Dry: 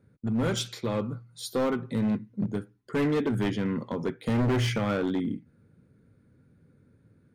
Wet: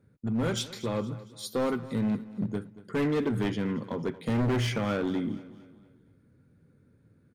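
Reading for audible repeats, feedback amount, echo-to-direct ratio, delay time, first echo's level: 3, 44%, -16.5 dB, 231 ms, -17.5 dB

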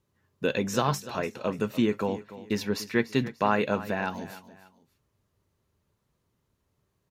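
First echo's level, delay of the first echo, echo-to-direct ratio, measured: -15.5 dB, 293 ms, -15.0 dB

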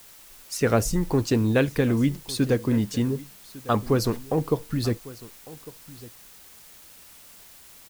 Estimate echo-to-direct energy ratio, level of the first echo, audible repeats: -19.5 dB, -19.5 dB, 1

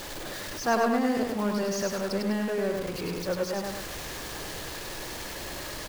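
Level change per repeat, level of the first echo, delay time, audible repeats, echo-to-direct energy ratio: -7.0 dB, -3.0 dB, 101 ms, 2, -2.0 dB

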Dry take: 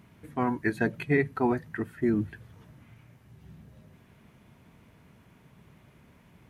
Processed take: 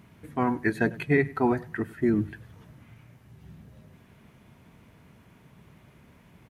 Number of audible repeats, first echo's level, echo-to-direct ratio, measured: 2, -20.5 dB, -20.5 dB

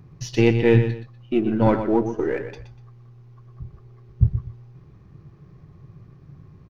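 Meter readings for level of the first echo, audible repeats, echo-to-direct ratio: -9.5 dB, 2, -9.0 dB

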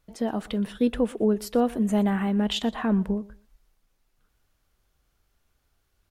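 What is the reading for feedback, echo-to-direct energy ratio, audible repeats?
22%, -21.5 dB, 2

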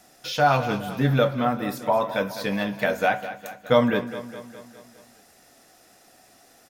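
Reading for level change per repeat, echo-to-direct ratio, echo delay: -5.0 dB, -11.5 dB, 206 ms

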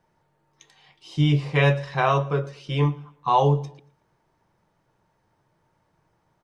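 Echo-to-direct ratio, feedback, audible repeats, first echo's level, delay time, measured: -22.0 dB, 38%, 2, -22.5 dB, 115 ms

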